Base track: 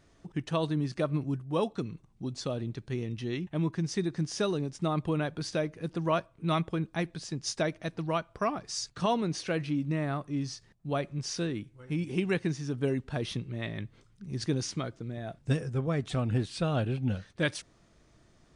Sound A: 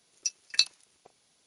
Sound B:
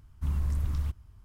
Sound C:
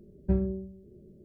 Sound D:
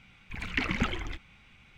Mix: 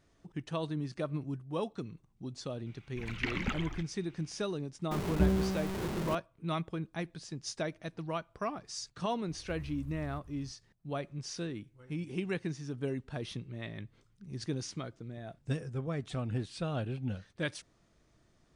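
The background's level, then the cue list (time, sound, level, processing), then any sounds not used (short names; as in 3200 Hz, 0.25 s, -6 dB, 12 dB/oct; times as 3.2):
base track -6 dB
2.66 add D -5.5 dB
4.91 add C -2.5 dB + zero-crossing step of -28.5 dBFS
9.28 add B -2 dB + compressor 16:1, threshold -40 dBFS
not used: A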